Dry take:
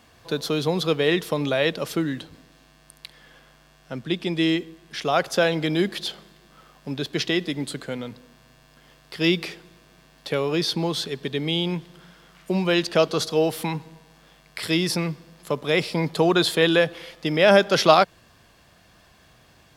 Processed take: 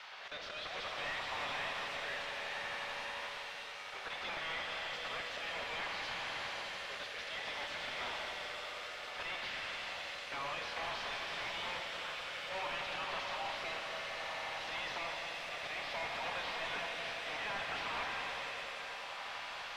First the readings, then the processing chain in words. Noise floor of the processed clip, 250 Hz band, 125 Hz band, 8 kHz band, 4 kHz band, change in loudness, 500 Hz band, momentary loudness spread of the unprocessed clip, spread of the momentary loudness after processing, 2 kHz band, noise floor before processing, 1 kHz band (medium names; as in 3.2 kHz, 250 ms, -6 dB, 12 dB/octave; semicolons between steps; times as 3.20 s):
-46 dBFS, -32.0 dB, -29.0 dB, -15.5 dB, -12.5 dB, -16.5 dB, -22.5 dB, 15 LU, 4 LU, -9.0 dB, -56 dBFS, -12.0 dB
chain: block-companded coder 3-bit; low-pass that closes with the level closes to 2.8 kHz, closed at -17 dBFS; spectral gate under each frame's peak -10 dB weak; high-pass 580 Hz 24 dB/octave; dynamic bell 1.5 kHz, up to -5 dB, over -43 dBFS, Q 3.5; slow attack 209 ms; compression, threshold -42 dBFS, peak gain reduction 19 dB; echo with a slow build-up 88 ms, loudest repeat 5, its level -15 dB; rotary cabinet horn 0.6 Hz; overdrive pedal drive 30 dB, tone 7.9 kHz, clips at -27 dBFS; distance through air 270 m; pitch-shifted reverb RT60 3.6 s, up +7 st, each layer -8 dB, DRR 3.5 dB; trim -3.5 dB